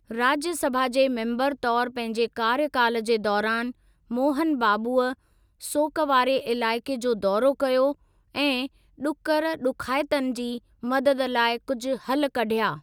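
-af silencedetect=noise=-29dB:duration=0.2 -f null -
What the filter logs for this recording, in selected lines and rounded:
silence_start: 3.70
silence_end: 4.11 | silence_duration: 0.41
silence_start: 5.13
silence_end: 5.64 | silence_duration: 0.51
silence_start: 7.92
silence_end: 8.35 | silence_duration: 0.43
silence_start: 8.66
silence_end: 9.03 | silence_duration: 0.36
silence_start: 10.57
silence_end: 10.83 | silence_duration: 0.26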